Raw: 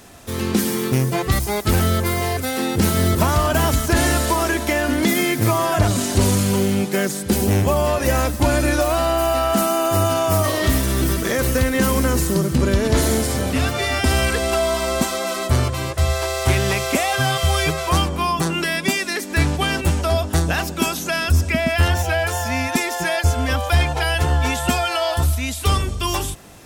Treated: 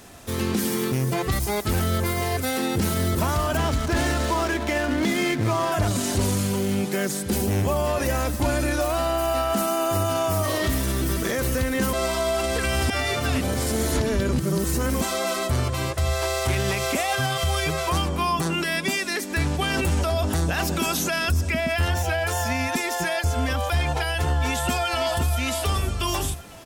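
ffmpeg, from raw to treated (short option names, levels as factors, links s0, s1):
-filter_complex "[0:a]asettb=1/sr,asplit=3[s0][s1][s2];[s0]atrim=end=3.574[s3];[s1]atrim=start=3.57:end=5.72,asetpts=PTS-STARTPTS,afade=t=in:d=0.004:c=qsin,afade=t=out:st=2.146:d=0.004:c=qsin,adynamicsmooth=sensitivity=7:basefreq=720[s4];[s2]atrim=start=5.716[s5];[s3][s4]acrossfade=d=0.004:c1=hsin:c2=qsin[s6];[s6][s5]acrossfade=d=0.004:c1=qsin:c2=hsin,asplit=2[s7][s8];[s8]afade=t=in:st=24.41:d=0.01,afade=t=out:st=25.37:d=0.01,aecho=0:1:520|1040|1560|2080:0.398107|0.139338|0.0487681|0.0170688[s9];[s7][s9]amix=inputs=2:normalize=0,asplit=5[s10][s11][s12][s13][s14];[s10]atrim=end=11.932[s15];[s11]atrim=start=11.928:end=15.012,asetpts=PTS-STARTPTS,areverse[s16];[s12]atrim=start=15.008:end=19.702[s17];[s13]atrim=start=19.698:end=21.342,asetpts=PTS-STARTPTS,volume=2.24[s18];[s14]atrim=start=21.338[s19];[s15][s16]acrossfade=d=0.004:c1=hsin:c2=hsin[s20];[s20][s17]acrossfade=d=0.004:c1=hsin:c2=hsin[s21];[s21][s18]acrossfade=d=0.004:c1=hsin:c2=hsin[s22];[s22][s19]acrossfade=d=0.004:c1=hsin:c2=hsin,alimiter=limit=0.211:level=0:latency=1:release=58,volume=0.841"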